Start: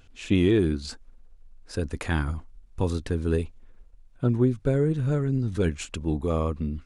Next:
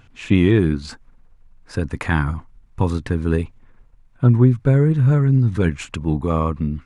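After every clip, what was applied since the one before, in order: graphic EQ 125/250/1000/2000 Hz +11/+4/+9/+7 dB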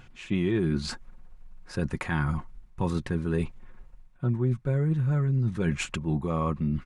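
comb 5.5 ms, depth 45%; reverse; compression 4:1, threshold -25 dBFS, peak gain reduction 14 dB; reverse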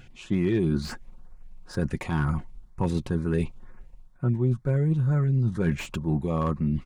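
LFO notch saw up 2.1 Hz 970–4100 Hz; slew-rate limiter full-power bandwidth 53 Hz; trim +2 dB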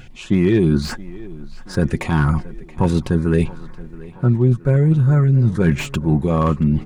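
tape echo 675 ms, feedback 68%, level -18 dB, low-pass 5.2 kHz; trim +9 dB

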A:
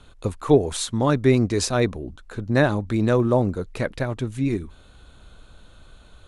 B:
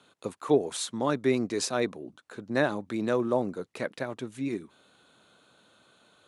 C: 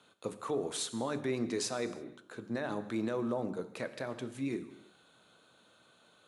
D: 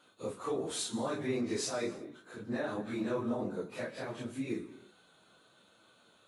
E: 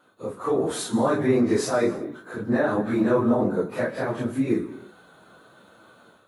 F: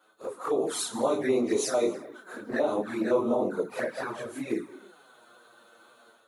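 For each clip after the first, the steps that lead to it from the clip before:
Bessel high-pass 230 Hz, order 4; trim -5.5 dB
hum notches 50/100/150/200/250/300/350/400 Hz; peak limiter -22 dBFS, peak gain reduction 11.5 dB; gated-style reverb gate 370 ms falling, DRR 10.5 dB; trim -3 dB
phase randomisation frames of 100 ms
high-order bell 4.6 kHz -9.5 dB 2.3 oct; level rider gain up to 8 dB; trim +5.5 dB
high-pass 110 Hz; tone controls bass -15 dB, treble +4 dB; touch-sensitive flanger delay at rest 9.7 ms, full sweep at -21.5 dBFS

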